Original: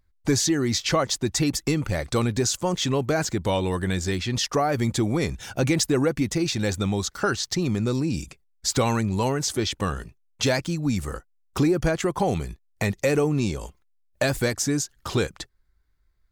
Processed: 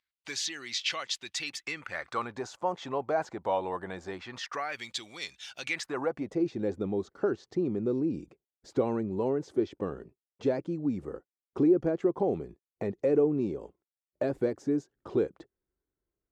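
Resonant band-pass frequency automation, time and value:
resonant band-pass, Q 1.8
0:01.44 2,900 Hz
0:02.51 790 Hz
0:04.13 790 Hz
0:04.92 3,500 Hz
0:05.63 3,500 Hz
0:05.91 1,100 Hz
0:06.47 380 Hz

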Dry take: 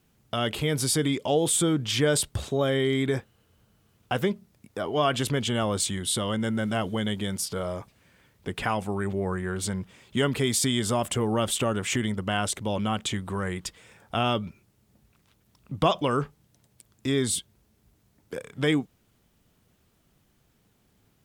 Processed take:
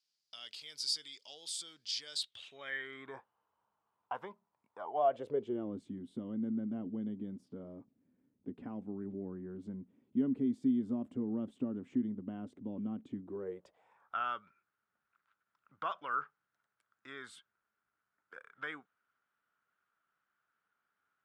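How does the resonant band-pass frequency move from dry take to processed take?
resonant band-pass, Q 6
0:02.11 4,800 Hz
0:03.14 960 Hz
0:04.79 960 Hz
0:05.74 260 Hz
0:13.19 260 Hz
0:14.16 1,400 Hz

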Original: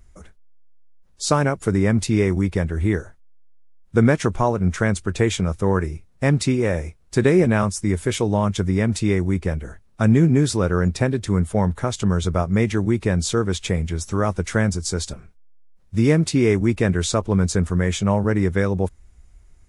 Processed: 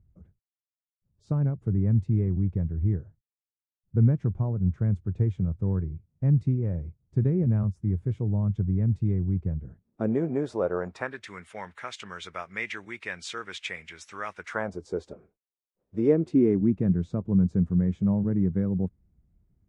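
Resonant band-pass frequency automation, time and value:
resonant band-pass, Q 1.9
0:09.65 120 Hz
0:10.20 620 Hz
0:10.75 620 Hz
0:11.28 2,200 Hz
0:14.35 2,200 Hz
0:14.80 440 Hz
0:16.06 440 Hz
0:16.84 170 Hz

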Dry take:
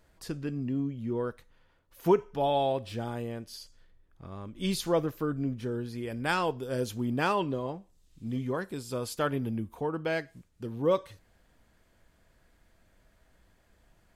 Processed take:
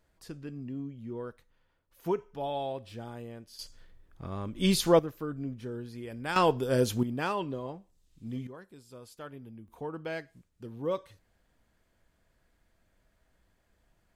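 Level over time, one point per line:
−7 dB
from 0:03.59 +5 dB
from 0:04.99 −5 dB
from 0:06.36 +5.5 dB
from 0:07.03 −4 dB
from 0:08.47 −15 dB
from 0:09.68 −6 dB

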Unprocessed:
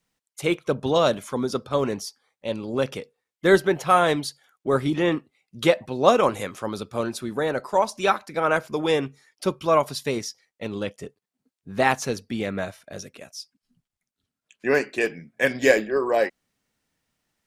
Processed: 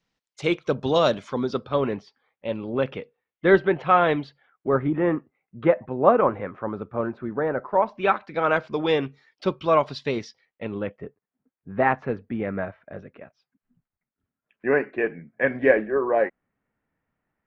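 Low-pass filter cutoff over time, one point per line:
low-pass filter 24 dB per octave
0:01.14 5,700 Hz
0:01.98 3,000 Hz
0:04.19 3,000 Hz
0:04.97 1,800 Hz
0:07.61 1,800 Hz
0:08.48 4,200 Hz
0:10.24 4,200 Hz
0:10.97 2,000 Hz

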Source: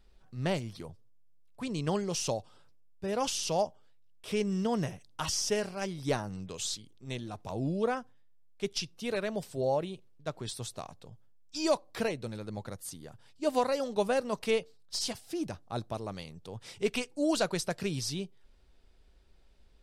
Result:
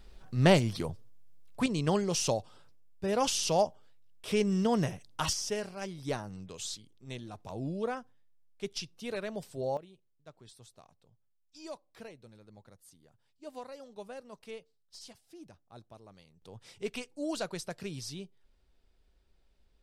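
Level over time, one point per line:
+9 dB
from 0:01.66 +2.5 dB
from 0:05.33 −4 dB
from 0:09.77 −16 dB
from 0:16.42 −6.5 dB

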